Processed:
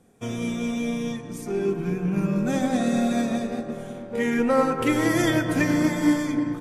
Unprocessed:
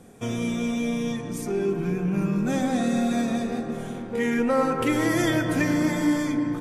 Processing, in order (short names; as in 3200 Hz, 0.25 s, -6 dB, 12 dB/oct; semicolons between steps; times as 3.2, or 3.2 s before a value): 2.26–4.21 whine 580 Hz -35 dBFS; upward expander 1.5:1, over -43 dBFS; gain +3 dB